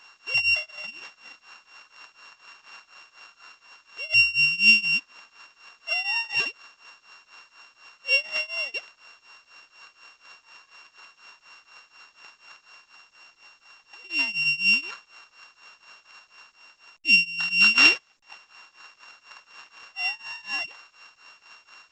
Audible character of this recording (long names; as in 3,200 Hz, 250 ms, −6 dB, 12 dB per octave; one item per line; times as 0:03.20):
a buzz of ramps at a fixed pitch in blocks of 16 samples
tremolo triangle 4.1 Hz, depth 95%
a quantiser's noise floor 12 bits, dither none
A-law companding